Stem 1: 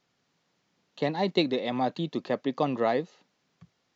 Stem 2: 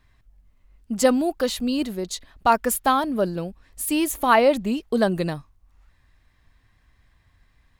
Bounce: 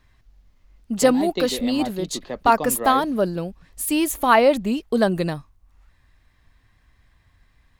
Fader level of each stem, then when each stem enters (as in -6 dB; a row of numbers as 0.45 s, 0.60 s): -2.5 dB, +1.5 dB; 0.00 s, 0.00 s